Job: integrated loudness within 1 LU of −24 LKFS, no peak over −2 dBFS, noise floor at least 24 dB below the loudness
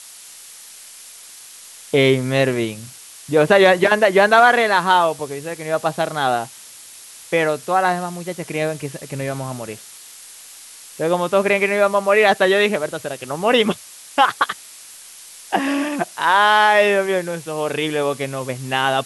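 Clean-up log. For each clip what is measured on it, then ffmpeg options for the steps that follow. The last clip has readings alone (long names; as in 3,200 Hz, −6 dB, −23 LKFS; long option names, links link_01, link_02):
background noise floor −41 dBFS; target noise floor −42 dBFS; integrated loudness −18.0 LKFS; sample peak −1.5 dBFS; target loudness −24.0 LKFS
→ -af "afftdn=noise_reduction=6:noise_floor=-41"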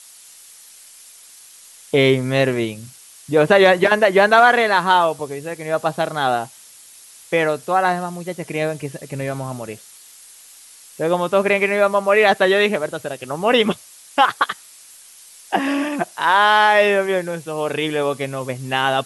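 background noise floor −45 dBFS; integrated loudness −18.0 LKFS; sample peak −1.5 dBFS; target loudness −24.0 LKFS
→ -af "volume=-6dB"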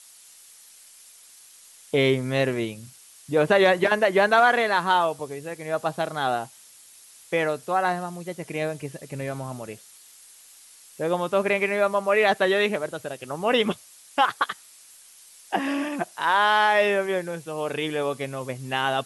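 integrated loudness −24.0 LKFS; sample peak −7.5 dBFS; background noise floor −51 dBFS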